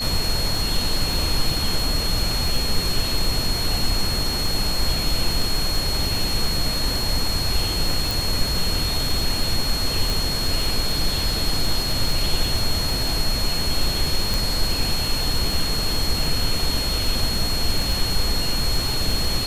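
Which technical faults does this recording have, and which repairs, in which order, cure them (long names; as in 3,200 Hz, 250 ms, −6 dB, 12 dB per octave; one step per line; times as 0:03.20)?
surface crackle 28 per second −25 dBFS
whistle 4,300 Hz −25 dBFS
0:08.11: click
0:10.10: click
0:14.34: click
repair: click removal
notch filter 4,300 Hz, Q 30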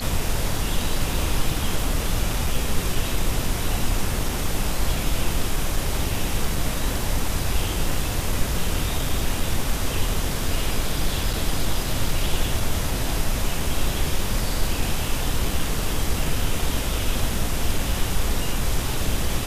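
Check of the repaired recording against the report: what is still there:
none of them is left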